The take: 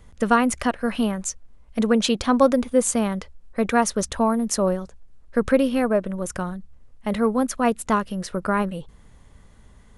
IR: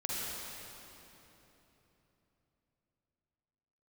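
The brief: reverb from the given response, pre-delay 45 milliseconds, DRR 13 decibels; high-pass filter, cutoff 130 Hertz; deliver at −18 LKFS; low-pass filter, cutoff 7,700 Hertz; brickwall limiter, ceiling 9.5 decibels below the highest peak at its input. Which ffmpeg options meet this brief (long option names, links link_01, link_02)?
-filter_complex "[0:a]highpass=130,lowpass=7700,alimiter=limit=-14dB:level=0:latency=1,asplit=2[link_01][link_02];[1:a]atrim=start_sample=2205,adelay=45[link_03];[link_02][link_03]afir=irnorm=-1:irlink=0,volume=-17.5dB[link_04];[link_01][link_04]amix=inputs=2:normalize=0,volume=7.5dB"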